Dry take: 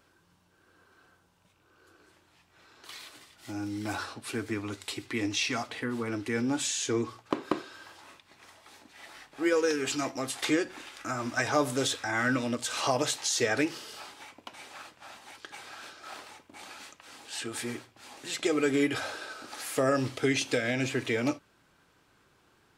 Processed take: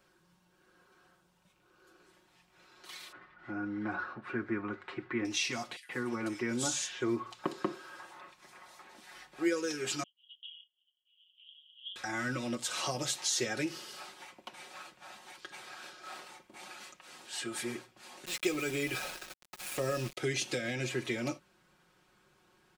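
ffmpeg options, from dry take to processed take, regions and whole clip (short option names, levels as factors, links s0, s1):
-filter_complex "[0:a]asettb=1/sr,asplit=3[s0][s1][s2];[s0]atrim=end=3.124[s3];[s1]atrim=start=3.12:end=5.25,asetpts=PTS-STARTPTS,afade=t=in:d=0.004:c=qsin,afade=t=out:st=2.126:d=0.004:c=qsin,lowpass=f=1500:t=q:w=2.6,lowshelf=f=340:g=2.5[s4];[s2]atrim=start=5.246[s5];[s3][s4]acrossfade=d=0.004:c1=hsin:c2=qsin[s6];[s6][s5]acrossfade=d=0.004:c1=qsin:c2=hsin,asettb=1/sr,asplit=3[s7][s8][s9];[s7]atrim=end=5.764[s10];[s8]atrim=start=5.76:end=9.11,asetpts=PTS-STARTPTS,afade=t=in:d=0.004:c=qsin,afade=t=out:st=3.346:d=0.004:c=qsin,equalizer=f=1100:w=0.62:g=5,acrossover=split=3200[s11][s12];[s11]adelay=130[s13];[s13][s12]amix=inputs=2:normalize=0,atrim=end_sample=147735[s14];[s9]atrim=start=9.106[s15];[s10][s14]acrossfade=d=0.004:c1=hsin:c2=qsin[s16];[s16][s15]acrossfade=d=0.004:c1=qsin:c2=hsin,asettb=1/sr,asplit=3[s17][s18][s19];[s17]atrim=end=10.034[s20];[s18]atrim=start=10.03:end=11.96,asetpts=PTS-STARTPTS,afade=t=in:d=0.004:c=qsin,afade=t=out:st=1.926:d=0.004:c=qsin,agate=range=0.0224:threshold=0.02:ratio=3:release=100:detection=peak,asuperpass=centerf=3100:order=8:qfactor=6.4[s21];[s19]atrim=start=11.956[s22];[s20][s21]acrossfade=d=0.004:c1=hsin:c2=qsin[s23];[s23][s22]acrossfade=d=0.004:c1=qsin:c2=hsin,asettb=1/sr,asplit=3[s24][s25][s26];[s24]atrim=end=18.254[s27];[s25]atrim=start=18.25:end=20.17,asetpts=PTS-STARTPTS,afade=t=in:d=0.004:c=qsin,afade=t=out:st=1.916:d=0.004:c=qsin,equalizer=f=2500:w=6.4:g=9,agate=range=0.0224:threshold=0.00794:ratio=3:release=100:detection=peak,aeval=exprs='val(0)*gte(abs(val(0)),0.0178)':c=same[s28];[s26]atrim=start=20.166[s29];[s27][s28]acrossfade=d=0.004:c1=hsin:c2=qsin[s30];[s30][s29]acrossfade=d=0.004:c1=qsin:c2=hsin,acrossover=split=360|3000[s31][s32][s33];[s32]acompressor=threshold=0.0178:ratio=3[s34];[s31][s34][s33]amix=inputs=3:normalize=0,aecho=1:1:5.5:0.7,volume=0.631"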